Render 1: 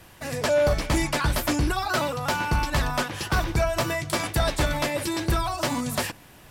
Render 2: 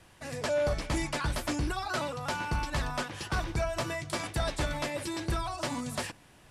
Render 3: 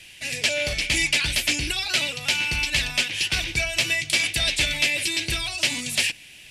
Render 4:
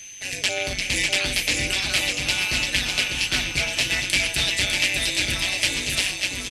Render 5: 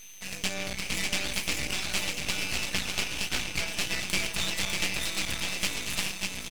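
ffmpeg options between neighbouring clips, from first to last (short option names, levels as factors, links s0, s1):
-af "lowpass=f=11000:w=0.5412,lowpass=f=11000:w=1.3066,volume=0.422"
-af "highshelf=f=1700:t=q:w=3:g=13.5"
-af "tremolo=f=190:d=0.889,aecho=1:1:600|1050|1388|1641|1830:0.631|0.398|0.251|0.158|0.1,aeval=exprs='val(0)+0.00891*sin(2*PI*6200*n/s)':c=same,volume=1.33"
-af "aeval=exprs='max(val(0),0)':c=same,volume=0.668"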